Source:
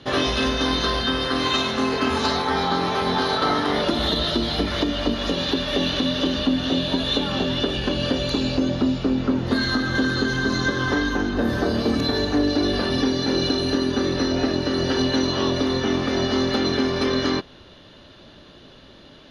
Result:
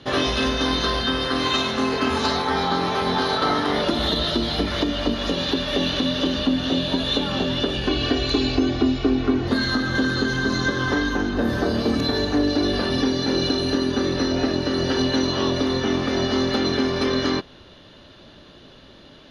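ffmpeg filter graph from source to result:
-filter_complex "[0:a]asettb=1/sr,asplit=3[a][b][c];[a]atrim=end=7.884[d];[b]atrim=start=7.88:end=9.48,asetpts=PTS-STARTPTS,afade=t=in:d=0.004:c=qsin,afade=t=out:st=1.596:d=0.004:c=qsin,lowpass=6.6k,equalizer=f=2.2k:w=7.3:g=4,aecho=1:1:2.7:0.85,atrim=end_sample=70560[e];[c]atrim=start=9.476[f];[d][e]acrossfade=d=0.004:c1=hsin:c2=qsin[g];[g][f]acrossfade=d=0.004:c1=qsin:c2=hsin"

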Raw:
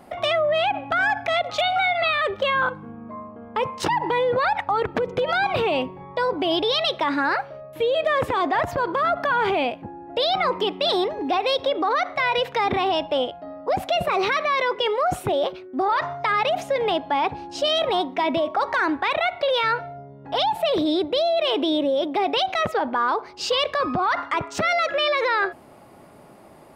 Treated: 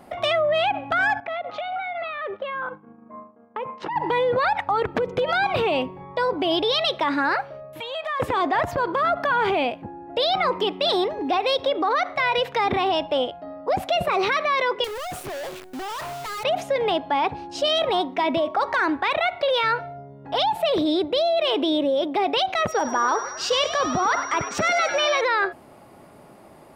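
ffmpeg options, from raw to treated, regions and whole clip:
-filter_complex "[0:a]asettb=1/sr,asplit=3[a][b][c];[a]atrim=end=1.204[d];[b]atrim=start=1.2:end=3.96,asetpts=PTS-STARTPTS,afade=t=in:d=0.004:c=qsin,afade=t=out:st=2.756:d=0.004:c=qsin,agate=range=-33dB:threshold=-32dB:ratio=3:release=100:detection=peak,acompressor=threshold=-26dB:ratio=4:attack=3.2:release=140:knee=1:detection=peak,highpass=190,lowpass=2.2k[e];[c]atrim=start=3.956[f];[d][e]acrossfade=d=0.004:c1=hsin:c2=qsin[g];[g][f]acrossfade=d=0.004:c1=qsin:c2=hsin,asettb=1/sr,asplit=3[h][i][j];[h]atrim=end=7.804[k];[i]atrim=start=7.8:end=8.2,asetpts=PTS-STARTPTS,afade=t=in:d=0.004:c=qsin,afade=t=out:st=0.396:d=0.004:c=qsin,lowshelf=f=610:t=q:w=3:g=-12.5,acompressor=threshold=-27dB:ratio=3:attack=3.2:release=140:knee=1:detection=peak[l];[j]atrim=start=8.196[m];[k][l]acrossfade=d=0.004:c1=hsin:c2=qsin[n];[n][m]acrossfade=d=0.004:c1=qsin:c2=hsin,asettb=1/sr,asplit=3[o][p][q];[o]atrim=end=14.844[r];[p]atrim=start=14.84:end=16.44,asetpts=PTS-STARTPTS,afade=t=in:d=0.004:c=qsin,afade=t=out:st=1.596:d=0.004:c=qsin,highpass=73,volume=31.5dB,asoftclip=hard,volume=-31.5dB,acrusher=bits=7:dc=4:mix=0:aa=0.000001[s];[q]atrim=start=16.436[t];[r][s]acrossfade=d=0.004:c1=hsin:c2=qsin[u];[u][t]acrossfade=d=0.004:c1=qsin:c2=hsin,asettb=1/sr,asplit=3[v][w][x];[v]atrim=end=22.684[y];[w]atrim=start=22.68:end=25.21,asetpts=PTS-STARTPTS,afade=t=in:d=0.004:c=qsin,afade=t=out:st=2.526:d=0.004:c=qsin,aeval=exprs='val(0)+0.0126*sin(2*PI*5700*n/s)':c=same,asplit=8[z][aa][ab][ac][ad][ae][af][ag];[aa]adelay=98,afreqshift=100,volume=-11dB[ah];[ab]adelay=196,afreqshift=200,volume=-15.4dB[ai];[ac]adelay=294,afreqshift=300,volume=-19.9dB[aj];[ad]adelay=392,afreqshift=400,volume=-24.3dB[ak];[ae]adelay=490,afreqshift=500,volume=-28.7dB[al];[af]adelay=588,afreqshift=600,volume=-33.2dB[am];[ag]adelay=686,afreqshift=700,volume=-37.6dB[an];[z][ah][ai][aj][ak][al][am][an]amix=inputs=8:normalize=0,atrim=end_sample=111573[ao];[x]atrim=start=25.206[ap];[y][ao]acrossfade=d=0.004:c1=hsin:c2=qsin[aq];[aq][ap]acrossfade=d=0.004:c1=qsin:c2=hsin"

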